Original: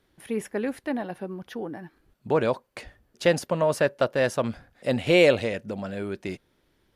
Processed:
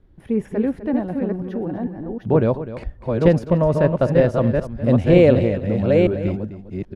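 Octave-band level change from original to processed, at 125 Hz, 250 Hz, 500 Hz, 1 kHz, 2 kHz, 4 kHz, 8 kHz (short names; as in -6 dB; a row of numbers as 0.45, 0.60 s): +14.5 dB, +10.5 dB, +6.0 dB, +2.5 dB, -3.0 dB, n/a, under -10 dB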